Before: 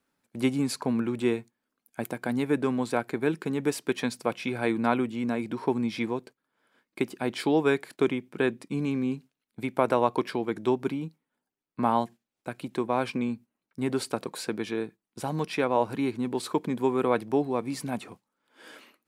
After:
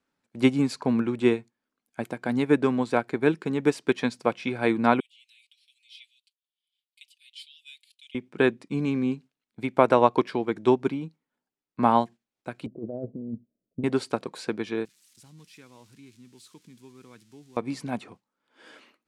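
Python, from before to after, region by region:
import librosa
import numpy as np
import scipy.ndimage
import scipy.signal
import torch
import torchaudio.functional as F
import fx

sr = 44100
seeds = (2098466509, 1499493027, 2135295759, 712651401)

y = fx.chain(x, sr, fx.steep_highpass(hz=2900.0, slope=48),
    fx.peak_eq(hz=6100.0, db=-13.0, octaves=1.2),
    fx.comb(ms=5.2, depth=0.93), at=(5.0, 8.15))
y = fx.chain(y, sr, fx.cheby1_lowpass(hz=660.0, order=6),
    fx.low_shelf(hz=89.0, db=5.0),
    fx.over_compress(threshold_db=-33.0, ratio=-1.0), at=(12.66, 13.84))
y = fx.chain(y, sr, fx.crossing_spikes(level_db=-26.5),
    fx.tone_stack(knobs='6-0-2'), at=(14.85, 17.57))
y = scipy.signal.sosfilt(scipy.signal.butter(2, 7300.0, 'lowpass', fs=sr, output='sos'), y)
y = fx.upward_expand(y, sr, threshold_db=-36.0, expansion=1.5)
y = F.gain(torch.from_numpy(y), 6.0).numpy()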